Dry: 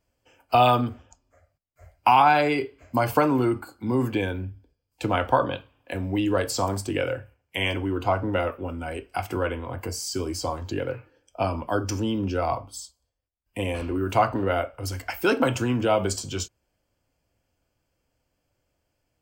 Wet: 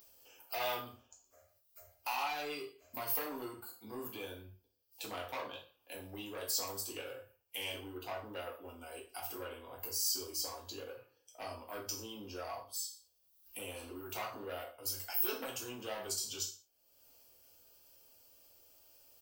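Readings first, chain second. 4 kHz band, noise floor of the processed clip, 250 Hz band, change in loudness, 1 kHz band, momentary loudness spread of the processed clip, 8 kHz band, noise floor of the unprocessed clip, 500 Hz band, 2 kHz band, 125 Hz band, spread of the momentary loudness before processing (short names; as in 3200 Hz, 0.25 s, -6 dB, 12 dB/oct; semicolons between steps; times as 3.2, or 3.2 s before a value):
-7.5 dB, -74 dBFS, -23.0 dB, -14.5 dB, -20.0 dB, 16 LU, -3.5 dB, -77 dBFS, -18.5 dB, -15.5 dB, -26.0 dB, 13 LU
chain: ten-band EQ 500 Hz +5 dB, 2000 Hz -11 dB, 8000 Hz -9 dB; in parallel at -1 dB: compressor, threshold -31 dBFS, peak gain reduction 16.5 dB; on the sum: echo 0.117 s -19.5 dB; soft clip -14 dBFS, distortion -14 dB; upward compressor, threshold -36 dBFS; pre-emphasis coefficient 0.97; non-linear reverb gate 0.12 s falling, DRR -2.5 dB; gain -3.5 dB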